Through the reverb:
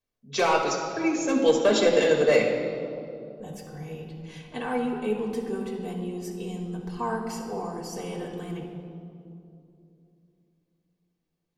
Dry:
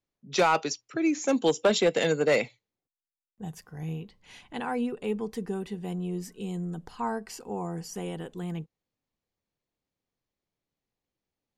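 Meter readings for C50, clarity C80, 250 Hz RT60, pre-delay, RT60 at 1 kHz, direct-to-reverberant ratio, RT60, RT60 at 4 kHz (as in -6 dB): 4.0 dB, 5.5 dB, 3.7 s, 4 ms, 2.3 s, -1.0 dB, 2.7 s, 1.6 s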